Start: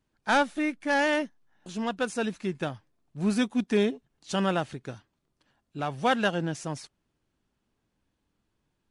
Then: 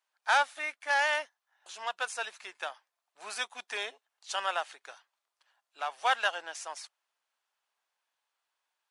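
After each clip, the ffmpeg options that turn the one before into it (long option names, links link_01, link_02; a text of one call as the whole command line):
ffmpeg -i in.wav -af "highpass=frequency=730:width=0.5412,highpass=frequency=730:width=1.3066" out.wav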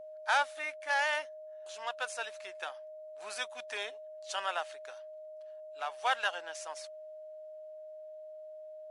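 ffmpeg -i in.wav -af "acontrast=38,aeval=exprs='val(0)+0.0158*sin(2*PI*620*n/s)':channel_layout=same,volume=-8.5dB" out.wav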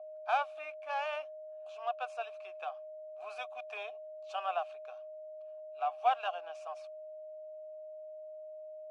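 ffmpeg -i in.wav -filter_complex "[0:a]asplit=3[link_01][link_02][link_03];[link_01]bandpass=frequency=730:width_type=q:width=8,volume=0dB[link_04];[link_02]bandpass=frequency=1090:width_type=q:width=8,volume=-6dB[link_05];[link_03]bandpass=frequency=2440:width_type=q:width=8,volume=-9dB[link_06];[link_04][link_05][link_06]amix=inputs=3:normalize=0,volume=8dB" out.wav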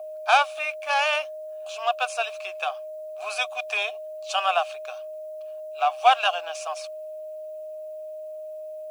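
ffmpeg -i in.wav -af "crystalizer=i=7.5:c=0,volume=8.5dB" out.wav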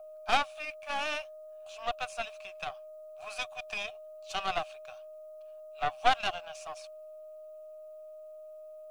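ffmpeg -i in.wav -af "aeval=exprs='0.596*(cos(1*acos(clip(val(0)/0.596,-1,1)))-cos(1*PI/2))+0.133*(cos(4*acos(clip(val(0)/0.596,-1,1)))-cos(4*PI/2))+0.0211*(cos(7*acos(clip(val(0)/0.596,-1,1)))-cos(7*PI/2))':channel_layout=same,volume=-8.5dB" out.wav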